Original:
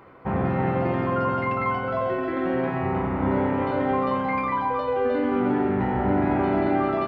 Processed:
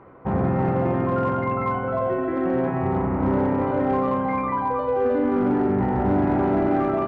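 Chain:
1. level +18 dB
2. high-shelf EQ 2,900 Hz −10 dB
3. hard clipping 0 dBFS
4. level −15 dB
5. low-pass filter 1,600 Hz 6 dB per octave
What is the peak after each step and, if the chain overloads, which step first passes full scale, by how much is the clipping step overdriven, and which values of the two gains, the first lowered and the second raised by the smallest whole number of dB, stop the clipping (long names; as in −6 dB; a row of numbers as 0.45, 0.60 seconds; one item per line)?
+7.5, +7.0, 0.0, −15.0, −15.0 dBFS
step 1, 7.0 dB
step 1 +11 dB, step 4 −8 dB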